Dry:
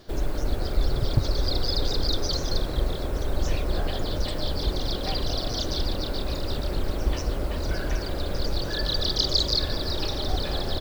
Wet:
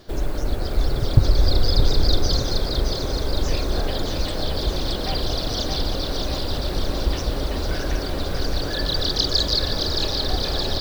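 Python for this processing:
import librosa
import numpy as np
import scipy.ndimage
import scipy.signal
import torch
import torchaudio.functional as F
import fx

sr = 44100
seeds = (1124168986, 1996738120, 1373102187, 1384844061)

y = fx.low_shelf(x, sr, hz=200.0, db=6.5, at=(1.17, 2.42))
y = fx.echo_thinned(y, sr, ms=620, feedback_pct=69, hz=160.0, wet_db=-5.5)
y = y * librosa.db_to_amplitude(2.5)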